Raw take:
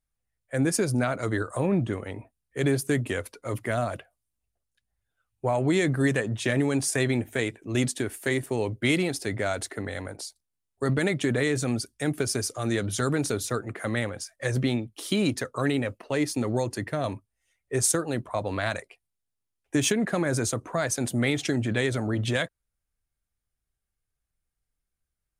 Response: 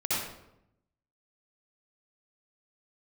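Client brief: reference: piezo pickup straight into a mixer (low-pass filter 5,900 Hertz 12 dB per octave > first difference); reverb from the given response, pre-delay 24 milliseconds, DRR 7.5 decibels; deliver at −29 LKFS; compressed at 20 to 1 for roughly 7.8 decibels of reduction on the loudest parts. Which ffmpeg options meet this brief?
-filter_complex "[0:a]acompressor=threshold=-27dB:ratio=20,asplit=2[link_01][link_02];[1:a]atrim=start_sample=2205,adelay=24[link_03];[link_02][link_03]afir=irnorm=-1:irlink=0,volume=-16.5dB[link_04];[link_01][link_04]amix=inputs=2:normalize=0,lowpass=5900,aderivative,volume=16.5dB"

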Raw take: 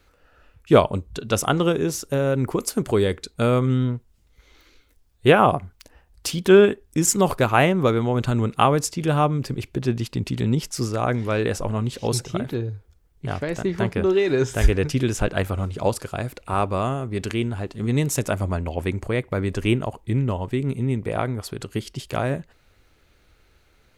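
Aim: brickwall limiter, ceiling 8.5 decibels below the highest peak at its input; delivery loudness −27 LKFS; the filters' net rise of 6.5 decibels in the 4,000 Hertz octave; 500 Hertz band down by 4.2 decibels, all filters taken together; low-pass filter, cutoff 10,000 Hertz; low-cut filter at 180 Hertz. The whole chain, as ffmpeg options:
ffmpeg -i in.wav -af "highpass=180,lowpass=10000,equalizer=frequency=500:width_type=o:gain=-5.5,equalizer=frequency=4000:width_type=o:gain=9,volume=-1dB,alimiter=limit=-10dB:level=0:latency=1" out.wav

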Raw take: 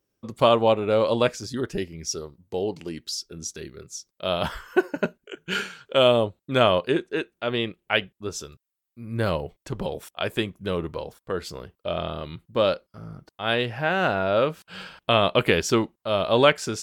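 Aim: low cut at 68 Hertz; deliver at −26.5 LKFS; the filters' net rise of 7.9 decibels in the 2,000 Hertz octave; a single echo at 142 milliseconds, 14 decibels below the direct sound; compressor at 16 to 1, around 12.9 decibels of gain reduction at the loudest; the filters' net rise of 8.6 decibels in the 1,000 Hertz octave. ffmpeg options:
ffmpeg -i in.wav -af "highpass=68,equalizer=frequency=1000:width_type=o:gain=9,equalizer=frequency=2000:width_type=o:gain=7.5,acompressor=threshold=-19dB:ratio=16,aecho=1:1:142:0.2,volume=0.5dB" out.wav

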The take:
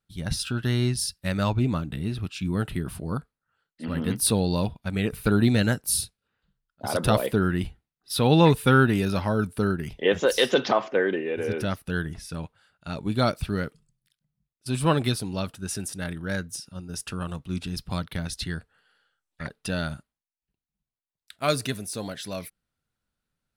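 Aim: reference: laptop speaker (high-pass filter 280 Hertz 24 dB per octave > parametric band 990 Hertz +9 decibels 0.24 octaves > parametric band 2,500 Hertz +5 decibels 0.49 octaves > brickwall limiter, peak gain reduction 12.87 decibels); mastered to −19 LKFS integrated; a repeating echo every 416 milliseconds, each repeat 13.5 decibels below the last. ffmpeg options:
ffmpeg -i in.wav -af "highpass=frequency=280:width=0.5412,highpass=frequency=280:width=1.3066,equalizer=frequency=990:width_type=o:width=0.24:gain=9,equalizer=frequency=2500:width_type=o:width=0.49:gain=5,aecho=1:1:416|832:0.211|0.0444,volume=12.5dB,alimiter=limit=-6dB:level=0:latency=1" out.wav

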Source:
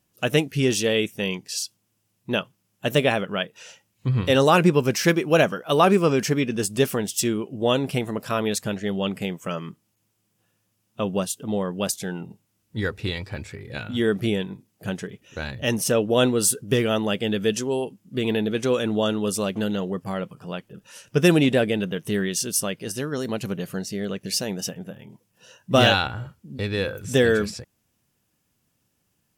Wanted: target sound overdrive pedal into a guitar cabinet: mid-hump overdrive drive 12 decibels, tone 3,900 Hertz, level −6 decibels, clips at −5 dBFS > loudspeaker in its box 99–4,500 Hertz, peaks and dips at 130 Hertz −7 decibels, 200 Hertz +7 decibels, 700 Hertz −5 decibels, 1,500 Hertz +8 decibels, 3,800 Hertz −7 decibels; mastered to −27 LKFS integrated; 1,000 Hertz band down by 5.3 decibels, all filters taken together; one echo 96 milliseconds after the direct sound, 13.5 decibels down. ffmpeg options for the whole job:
ffmpeg -i in.wav -filter_complex "[0:a]equalizer=frequency=1000:width_type=o:gain=-8.5,aecho=1:1:96:0.211,asplit=2[link_01][link_02];[link_02]highpass=frequency=720:poles=1,volume=12dB,asoftclip=type=tanh:threshold=-5dB[link_03];[link_01][link_03]amix=inputs=2:normalize=0,lowpass=frequency=3900:poles=1,volume=-6dB,highpass=99,equalizer=frequency=130:width_type=q:width=4:gain=-7,equalizer=frequency=200:width_type=q:width=4:gain=7,equalizer=frequency=700:width_type=q:width=4:gain=-5,equalizer=frequency=1500:width_type=q:width=4:gain=8,equalizer=frequency=3800:width_type=q:width=4:gain=-7,lowpass=frequency=4500:width=0.5412,lowpass=frequency=4500:width=1.3066,volume=-4.5dB" out.wav

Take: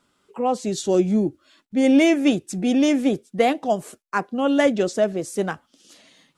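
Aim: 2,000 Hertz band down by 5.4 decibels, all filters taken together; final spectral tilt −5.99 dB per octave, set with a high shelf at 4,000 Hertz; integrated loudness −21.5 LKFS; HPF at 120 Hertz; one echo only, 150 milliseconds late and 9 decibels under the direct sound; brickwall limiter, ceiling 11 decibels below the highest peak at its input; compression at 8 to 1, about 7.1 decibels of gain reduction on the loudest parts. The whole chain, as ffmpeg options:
ffmpeg -i in.wav -af "highpass=120,equalizer=frequency=2000:width_type=o:gain=-4.5,highshelf=frequency=4000:gain=-8.5,acompressor=threshold=-20dB:ratio=8,alimiter=limit=-22.5dB:level=0:latency=1,aecho=1:1:150:0.355,volume=9dB" out.wav

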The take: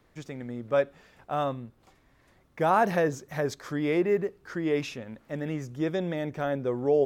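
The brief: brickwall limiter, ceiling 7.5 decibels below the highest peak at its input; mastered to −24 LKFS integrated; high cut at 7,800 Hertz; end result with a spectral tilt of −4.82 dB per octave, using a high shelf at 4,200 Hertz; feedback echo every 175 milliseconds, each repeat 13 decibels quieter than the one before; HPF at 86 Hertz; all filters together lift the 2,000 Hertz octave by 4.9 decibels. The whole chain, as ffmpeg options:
ffmpeg -i in.wav -af "highpass=86,lowpass=7800,equalizer=frequency=2000:width_type=o:gain=5,highshelf=frequency=4200:gain=6,alimiter=limit=-17dB:level=0:latency=1,aecho=1:1:175|350|525:0.224|0.0493|0.0108,volume=6dB" out.wav

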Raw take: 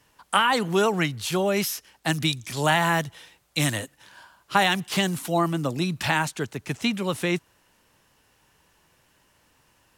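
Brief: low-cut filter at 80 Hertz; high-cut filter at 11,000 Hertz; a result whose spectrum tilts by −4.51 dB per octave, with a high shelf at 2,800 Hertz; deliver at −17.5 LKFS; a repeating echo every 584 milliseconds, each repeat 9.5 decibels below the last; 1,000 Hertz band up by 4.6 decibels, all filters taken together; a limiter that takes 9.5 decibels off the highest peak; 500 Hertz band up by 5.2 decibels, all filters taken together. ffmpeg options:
ffmpeg -i in.wav -af "highpass=80,lowpass=11000,equalizer=frequency=500:width_type=o:gain=6,equalizer=frequency=1000:width_type=o:gain=5,highshelf=frequency=2800:gain=-9,alimiter=limit=-12dB:level=0:latency=1,aecho=1:1:584|1168|1752|2336:0.335|0.111|0.0365|0.012,volume=7dB" out.wav

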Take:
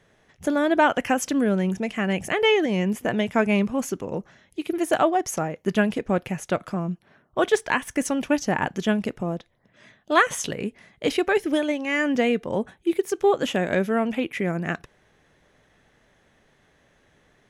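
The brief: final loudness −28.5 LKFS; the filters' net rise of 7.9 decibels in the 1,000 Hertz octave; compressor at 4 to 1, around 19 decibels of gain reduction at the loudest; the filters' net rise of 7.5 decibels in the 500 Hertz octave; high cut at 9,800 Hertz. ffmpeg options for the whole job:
ffmpeg -i in.wav -af "lowpass=9800,equalizer=frequency=500:width_type=o:gain=7.5,equalizer=frequency=1000:width_type=o:gain=7.5,acompressor=threshold=-31dB:ratio=4,volume=5dB" out.wav

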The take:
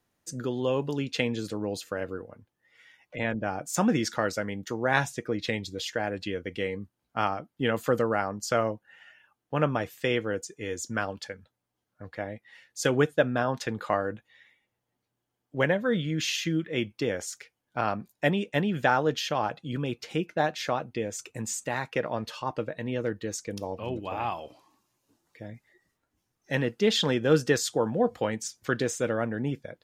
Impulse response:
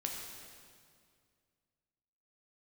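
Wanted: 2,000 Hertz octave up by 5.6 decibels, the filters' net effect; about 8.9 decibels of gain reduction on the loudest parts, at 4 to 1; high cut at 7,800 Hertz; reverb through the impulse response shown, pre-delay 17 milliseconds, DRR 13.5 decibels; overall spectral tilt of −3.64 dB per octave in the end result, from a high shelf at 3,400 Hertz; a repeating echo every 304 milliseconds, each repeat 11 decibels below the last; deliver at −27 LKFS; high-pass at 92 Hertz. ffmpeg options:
-filter_complex "[0:a]highpass=92,lowpass=7800,equalizer=frequency=2000:width_type=o:gain=6,highshelf=frequency=3400:gain=4,acompressor=threshold=-26dB:ratio=4,aecho=1:1:304|608|912:0.282|0.0789|0.0221,asplit=2[link_01][link_02];[1:a]atrim=start_sample=2205,adelay=17[link_03];[link_02][link_03]afir=irnorm=-1:irlink=0,volume=-14.5dB[link_04];[link_01][link_04]amix=inputs=2:normalize=0,volume=4.5dB"

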